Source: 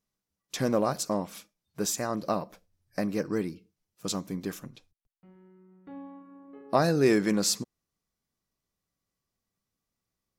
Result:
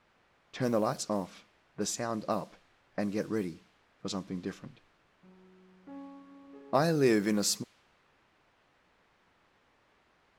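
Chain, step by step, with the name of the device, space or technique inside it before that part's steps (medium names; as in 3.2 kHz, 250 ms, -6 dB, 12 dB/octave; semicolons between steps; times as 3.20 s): cassette deck with a dynamic noise filter (white noise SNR 23 dB; level-controlled noise filter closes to 1.7 kHz, open at -23 dBFS); trim -3 dB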